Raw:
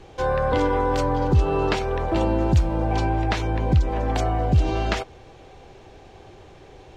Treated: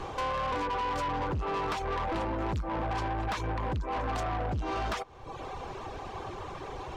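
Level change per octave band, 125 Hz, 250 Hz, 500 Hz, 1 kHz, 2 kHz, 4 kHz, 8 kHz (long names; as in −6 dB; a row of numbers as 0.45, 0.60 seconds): −13.5 dB, −12.0 dB, −11.0 dB, −5.0 dB, −6.0 dB, −6.5 dB, can't be measured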